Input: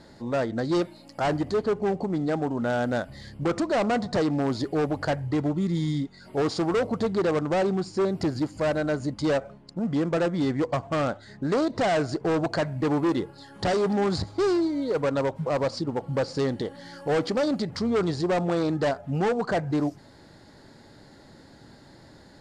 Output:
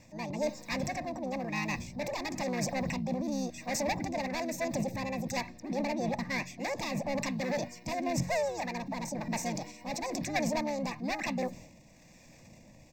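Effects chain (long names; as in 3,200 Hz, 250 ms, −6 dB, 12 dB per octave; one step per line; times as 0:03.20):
flat-topped bell 600 Hz −12.5 dB 1.2 octaves
rotating-speaker cabinet horn 0.6 Hz
transient designer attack −3 dB, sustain +8 dB
pitch-shifted copies added −5 semitones −4 dB, +7 semitones −17 dB
phaser with its sweep stopped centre 1,200 Hz, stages 8
wrong playback speed 45 rpm record played at 78 rpm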